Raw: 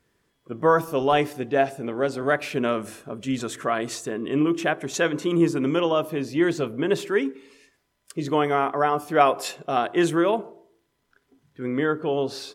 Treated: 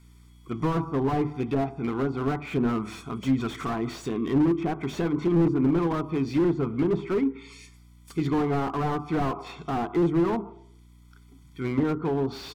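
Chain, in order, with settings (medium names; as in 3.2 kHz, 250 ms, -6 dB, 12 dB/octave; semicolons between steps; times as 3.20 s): hum 60 Hz, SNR 33 dB; low-pass that closes with the level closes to 900 Hz, closed at -20.5 dBFS; treble shelf 2.7 kHz +9 dB; hum notches 50/100/150/200/250 Hz; comb 0.9 ms, depth 92%; slew-rate limiter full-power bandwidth 37 Hz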